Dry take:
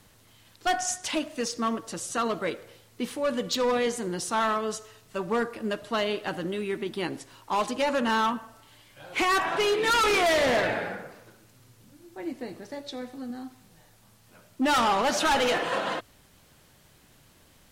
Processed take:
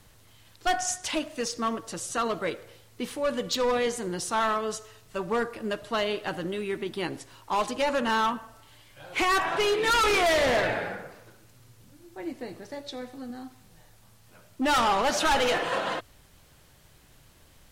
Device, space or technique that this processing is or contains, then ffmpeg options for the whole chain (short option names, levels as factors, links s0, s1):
low shelf boost with a cut just above: -af "lowshelf=f=78:g=7.5,equalizer=f=230:t=o:w=0.82:g=-3.5"